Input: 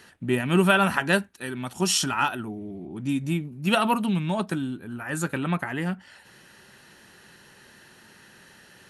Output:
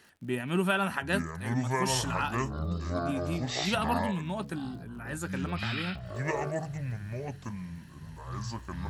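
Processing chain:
delay with pitch and tempo change per echo 692 ms, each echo −7 semitones, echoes 2
surface crackle 77 per second −41 dBFS
level −8 dB

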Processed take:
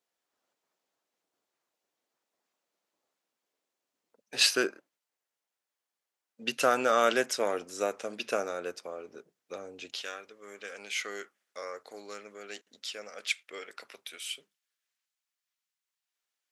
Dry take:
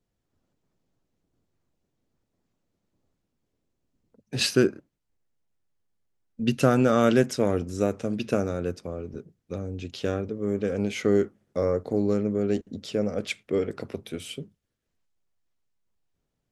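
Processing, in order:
high-pass filter 700 Hz 12 dB per octave, from 0:10.01 1,500 Hz
level +2 dB

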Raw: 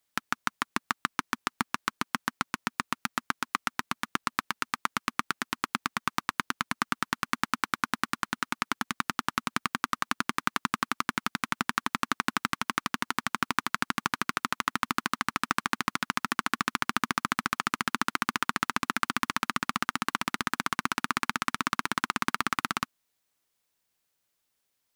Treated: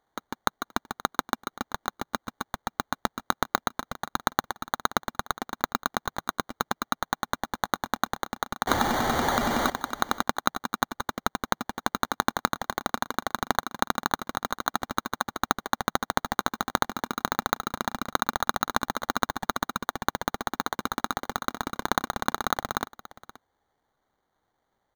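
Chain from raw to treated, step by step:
0:08.67–0:09.70: converter with a step at zero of −21 dBFS
sample-rate reduction 2,600 Hz, jitter 0%
thirty-one-band graphic EQ 160 Hz −4 dB, 800 Hz +6 dB, 2,000 Hz +3 dB, 10,000 Hz −8 dB
single-tap delay 526 ms −18.5 dB

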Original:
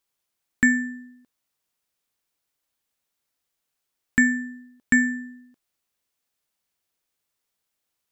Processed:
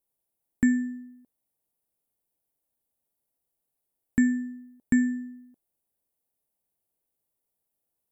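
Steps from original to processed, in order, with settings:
flat-topped bell 2,800 Hz −14.5 dB 3 octaves

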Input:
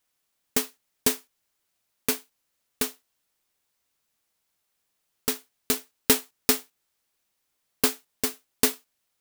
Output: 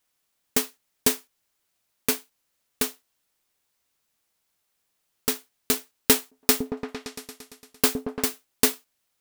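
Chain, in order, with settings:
0:06.20–0:08.27: echo whose low-pass opens from repeat to repeat 114 ms, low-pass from 400 Hz, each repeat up 1 octave, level −3 dB
level +1.5 dB

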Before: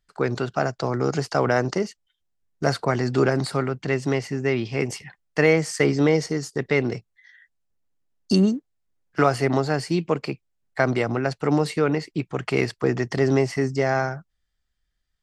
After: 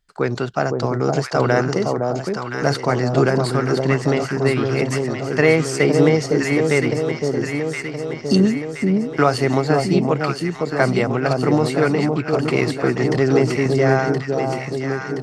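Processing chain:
delay that swaps between a low-pass and a high-pass 511 ms, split 980 Hz, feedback 76%, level −3 dB
level +3 dB

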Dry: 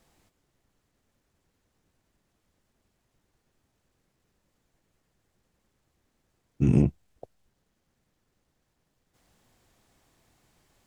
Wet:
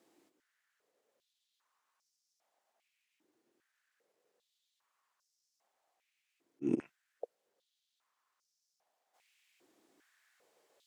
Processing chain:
volume swells 165 ms
high-pass on a step sequencer 2.5 Hz 320–5,400 Hz
level −6.5 dB

